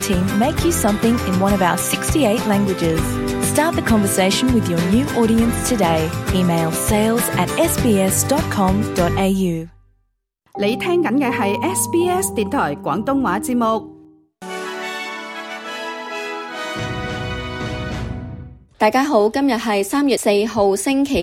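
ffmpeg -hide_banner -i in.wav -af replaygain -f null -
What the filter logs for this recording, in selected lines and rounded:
track_gain = -0.8 dB
track_peak = 0.526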